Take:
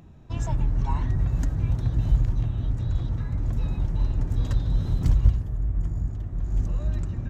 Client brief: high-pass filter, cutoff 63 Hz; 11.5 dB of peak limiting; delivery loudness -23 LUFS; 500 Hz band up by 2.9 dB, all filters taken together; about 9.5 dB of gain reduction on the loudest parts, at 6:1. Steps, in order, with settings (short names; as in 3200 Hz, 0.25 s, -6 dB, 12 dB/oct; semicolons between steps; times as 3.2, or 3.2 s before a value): HPF 63 Hz; bell 500 Hz +4 dB; compressor 6:1, threshold -26 dBFS; gain +15 dB; limiter -14.5 dBFS